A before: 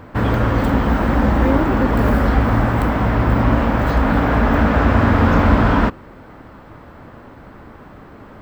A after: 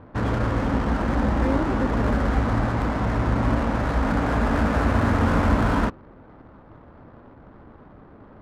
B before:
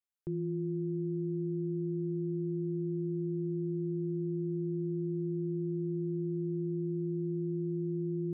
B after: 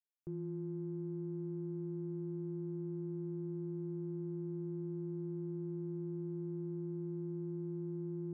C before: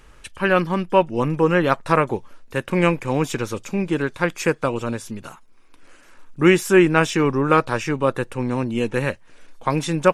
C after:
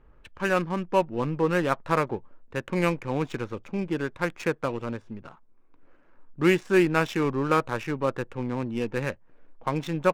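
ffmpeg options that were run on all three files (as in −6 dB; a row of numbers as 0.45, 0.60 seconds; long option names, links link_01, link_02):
-af "adynamicsmooth=sensitivity=4:basefreq=1100,volume=-6.5dB"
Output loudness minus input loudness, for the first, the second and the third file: −6.5, −6.5, −6.5 LU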